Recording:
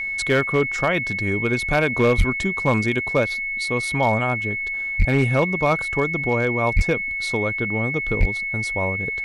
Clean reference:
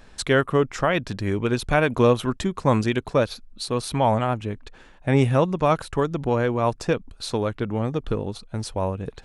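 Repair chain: clip repair -10.5 dBFS; band-stop 2.2 kHz, Q 30; de-plosive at 2.17/4.98/6.75/8.19 s

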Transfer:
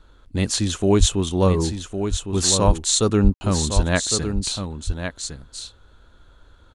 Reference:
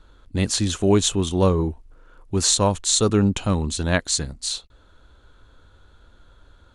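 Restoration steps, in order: de-plosive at 0.99/2.66/3.23/3.75 s; room tone fill 3.34–3.41 s; inverse comb 1108 ms -8 dB

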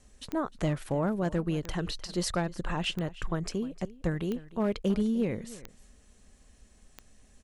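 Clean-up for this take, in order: clip repair -20 dBFS; de-click; inverse comb 304 ms -18.5 dB

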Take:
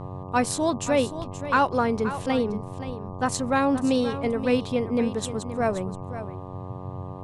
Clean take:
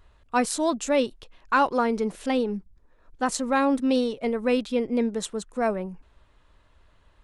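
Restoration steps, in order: de-hum 92.6 Hz, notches 13; de-plosive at 1.18/2.86 s; noise print and reduce 22 dB; inverse comb 526 ms -12 dB

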